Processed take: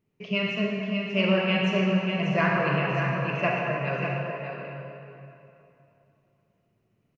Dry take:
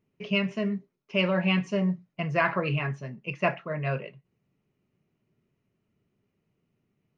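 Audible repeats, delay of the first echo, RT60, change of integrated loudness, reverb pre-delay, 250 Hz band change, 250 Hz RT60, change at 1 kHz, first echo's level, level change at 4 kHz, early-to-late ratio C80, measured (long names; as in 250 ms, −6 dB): 1, 591 ms, 2.9 s, +2.5 dB, 33 ms, +2.5 dB, 3.0 s, +3.5 dB, −7.0 dB, +3.5 dB, −1.0 dB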